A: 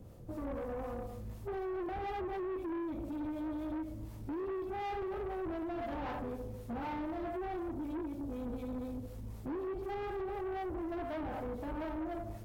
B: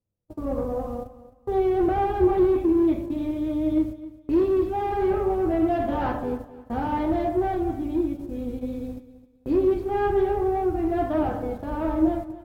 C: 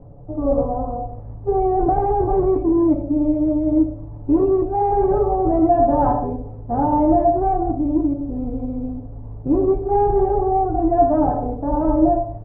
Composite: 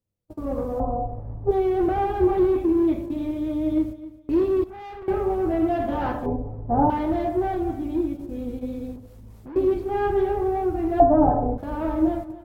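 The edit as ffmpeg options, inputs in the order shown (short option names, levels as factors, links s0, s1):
-filter_complex "[2:a]asplit=3[s0][s1][s2];[0:a]asplit=2[s3][s4];[1:a]asplit=6[s5][s6][s7][s8][s9][s10];[s5]atrim=end=0.802[s11];[s0]atrim=start=0.798:end=1.512[s12];[s6]atrim=start=1.508:end=4.642[s13];[s3]atrim=start=4.638:end=5.082[s14];[s7]atrim=start=5.078:end=6.262[s15];[s1]atrim=start=6.258:end=6.902[s16];[s8]atrim=start=6.898:end=8.962[s17];[s4]atrim=start=8.958:end=9.562[s18];[s9]atrim=start=9.558:end=11.002[s19];[s2]atrim=start=10.998:end=11.582[s20];[s10]atrim=start=11.578[s21];[s11][s12]acrossfade=d=0.004:c1=hsin:c2=hsin[s22];[s22][s13]acrossfade=d=0.004:c1=hsin:c2=hsin[s23];[s23][s14]acrossfade=d=0.004:c1=hsin:c2=hsin[s24];[s24][s15]acrossfade=d=0.004:c1=hsin:c2=hsin[s25];[s25][s16]acrossfade=d=0.004:c1=hsin:c2=hsin[s26];[s26][s17]acrossfade=d=0.004:c1=hsin:c2=hsin[s27];[s27][s18]acrossfade=d=0.004:c1=hsin:c2=hsin[s28];[s28][s19]acrossfade=d=0.004:c1=hsin:c2=hsin[s29];[s29][s20]acrossfade=d=0.004:c1=hsin:c2=hsin[s30];[s30][s21]acrossfade=d=0.004:c1=hsin:c2=hsin"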